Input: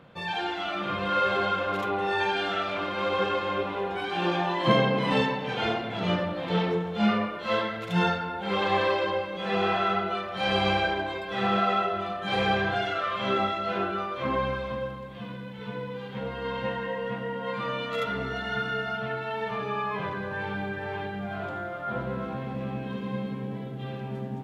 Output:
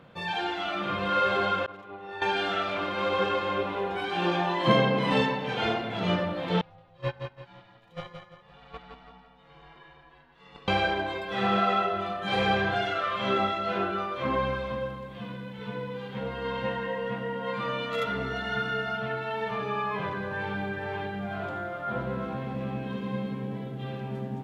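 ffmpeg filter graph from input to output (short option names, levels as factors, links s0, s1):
-filter_complex "[0:a]asettb=1/sr,asplit=3[s0][s1][s2];[s0]atrim=end=1.664[s3];[s1]atrim=start=1.66:end=2.22,asetpts=PTS-STARTPTS,afade=t=in:d=0.004:c=qsin,afade=t=out:st=0.556:d=0.004:c=qsin,agate=range=0.0224:threshold=0.112:ratio=3:release=100:detection=peak,lowpass=f=3500:p=1[s4];[s2]atrim=start=2.216[s5];[s3][s4]acrossfade=d=0.004:c1=hsin:c2=qsin[s6];[s6][s5]acrossfade=d=0.004:c1=qsin:c2=hsin,asettb=1/sr,asplit=3[s7][s8][s9];[s7]atrim=end=6.614[s10];[s8]atrim=start=6.61:end=10.68,asetpts=PTS-STARTPTS,afade=t=in:d=0.004:c=qsin,afade=t=out:st=4.066:d=0.004:c=qsin,agate=range=0.0631:threshold=0.0891:ratio=16:release=100:detection=peak,aecho=1:1:170|340|510|680:0.501|0.175|0.0614|0.0215,atrim=end_sample=179487,aeval=exprs='val(0)*sin(2*PI*340*n/s)':c=same[s11];[s9]atrim=start=10.676[s12];[s10][s11]acrossfade=d=0.004:c1=hsin:c2=qsin[s13];[s13][s12]acrossfade=d=0.004:c1=qsin:c2=hsin"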